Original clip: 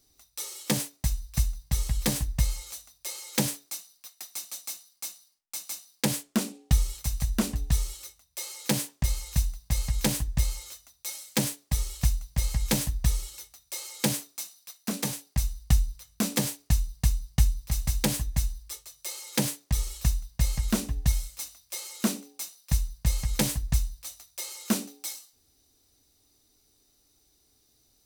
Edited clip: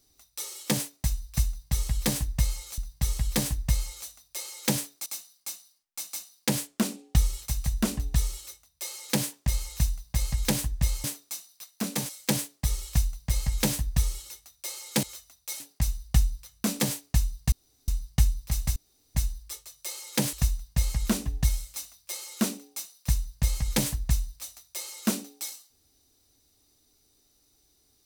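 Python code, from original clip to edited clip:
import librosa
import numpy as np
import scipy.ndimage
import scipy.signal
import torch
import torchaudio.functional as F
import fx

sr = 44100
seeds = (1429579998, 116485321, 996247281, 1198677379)

y = fx.edit(x, sr, fx.repeat(start_s=1.48, length_s=1.3, count=2),
    fx.cut(start_s=3.76, length_s=0.86),
    fx.swap(start_s=10.6, length_s=0.57, other_s=14.11, other_length_s=1.05),
    fx.insert_room_tone(at_s=17.08, length_s=0.36),
    fx.room_tone_fill(start_s=17.96, length_s=0.39),
    fx.cut(start_s=19.53, length_s=0.43), tone=tone)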